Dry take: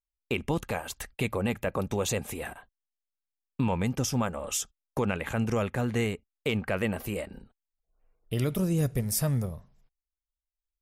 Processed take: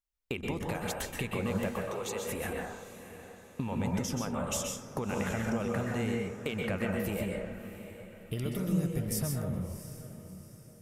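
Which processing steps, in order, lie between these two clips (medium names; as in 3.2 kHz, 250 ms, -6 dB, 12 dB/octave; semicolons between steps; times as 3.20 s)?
compression, threshold -32 dBFS, peak gain reduction 10 dB; 1.72–2.27 s: rippled Chebyshev high-pass 320 Hz, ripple 3 dB; echo that smears into a reverb 672 ms, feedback 44%, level -13 dB; plate-style reverb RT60 0.69 s, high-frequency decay 0.35×, pre-delay 115 ms, DRR 0 dB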